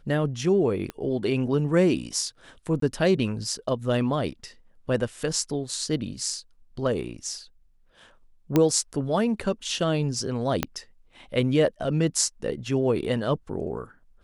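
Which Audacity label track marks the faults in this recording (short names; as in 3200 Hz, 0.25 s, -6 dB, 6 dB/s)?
0.900000	0.900000	pop -20 dBFS
2.800000	2.820000	gap 23 ms
8.560000	8.560000	pop -8 dBFS
10.630000	10.630000	pop -8 dBFS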